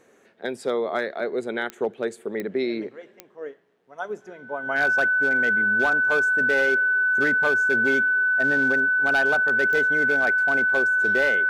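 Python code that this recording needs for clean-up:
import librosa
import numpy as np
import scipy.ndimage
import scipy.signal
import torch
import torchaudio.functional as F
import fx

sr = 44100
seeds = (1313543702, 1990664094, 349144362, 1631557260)

y = fx.fix_declip(x, sr, threshold_db=-15.0)
y = fx.fix_declick_ar(y, sr, threshold=10.0)
y = fx.notch(y, sr, hz=1500.0, q=30.0)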